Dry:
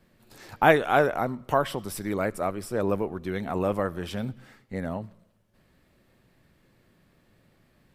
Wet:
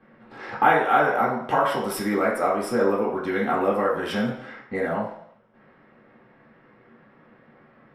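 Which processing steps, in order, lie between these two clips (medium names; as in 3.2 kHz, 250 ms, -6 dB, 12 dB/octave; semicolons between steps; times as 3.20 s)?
compression 3:1, threshold -31 dBFS, peak gain reduction 14 dB; treble shelf 3.4 kHz +8 dB; level-controlled noise filter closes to 1.9 kHz, open at -31 dBFS; reverberation RT60 0.60 s, pre-delay 3 ms, DRR -7 dB; trim -3.5 dB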